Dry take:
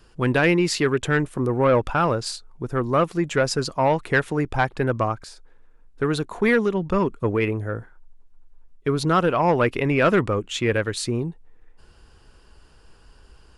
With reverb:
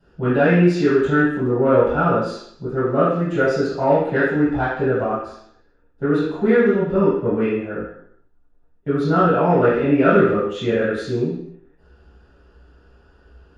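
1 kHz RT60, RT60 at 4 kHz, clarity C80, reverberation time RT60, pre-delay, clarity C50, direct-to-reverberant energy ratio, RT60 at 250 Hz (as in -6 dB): 0.70 s, 0.70 s, 4.0 dB, 0.70 s, 3 ms, 1.0 dB, -11.5 dB, 0.70 s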